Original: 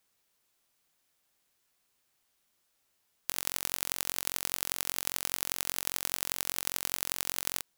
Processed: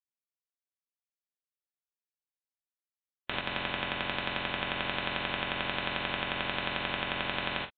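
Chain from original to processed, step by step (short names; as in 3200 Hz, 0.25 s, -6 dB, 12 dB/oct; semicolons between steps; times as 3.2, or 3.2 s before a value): per-bin expansion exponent 2; downsampling 8000 Hz; non-linear reverb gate 0.1 s flat, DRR -3.5 dB; 3.41–4.61 three-band expander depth 70%; gain +6.5 dB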